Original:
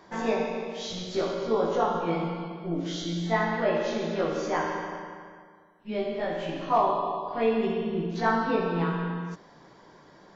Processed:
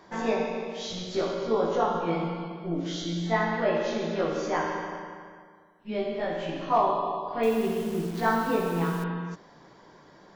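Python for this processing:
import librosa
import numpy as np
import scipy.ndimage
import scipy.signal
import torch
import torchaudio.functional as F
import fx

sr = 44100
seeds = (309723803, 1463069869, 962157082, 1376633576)

y = fx.delta_hold(x, sr, step_db=-38.5, at=(7.43, 9.04))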